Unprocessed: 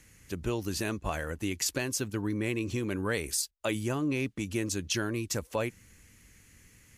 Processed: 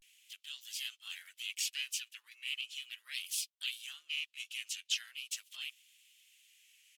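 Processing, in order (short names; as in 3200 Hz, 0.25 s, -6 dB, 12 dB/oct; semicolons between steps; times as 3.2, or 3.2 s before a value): harmoniser -12 st -10 dB, +3 st -1 dB; ladder high-pass 2600 Hz, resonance 60%; vibrato 0.38 Hz 75 cents; gain +1 dB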